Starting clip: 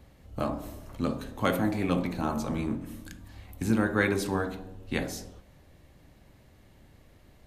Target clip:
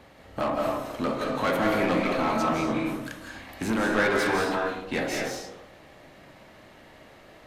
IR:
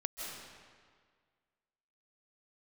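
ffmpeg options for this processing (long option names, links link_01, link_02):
-filter_complex "[0:a]asplit=2[link_01][link_02];[link_02]highpass=frequency=720:poles=1,volume=26dB,asoftclip=type=tanh:threshold=-9.5dB[link_03];[link_01][link_03]amix=inputs=2:normalize=0,lowpass=frequency=2400:poles=1,volume=-6dB[link_04];[1:a]atrim=start_sample=2205,afade=type=out:start_time=0.35:duration=0.01,atrim=end_sample=15876[link_05];[link_04][link_05]afir=irnorm=-1:irlink=0,volume=-5dB"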